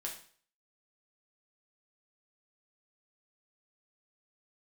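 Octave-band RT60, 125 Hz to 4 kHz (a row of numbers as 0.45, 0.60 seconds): 0.45, 0.45, 0.50, 0.50, 0.45, 0.45 seconds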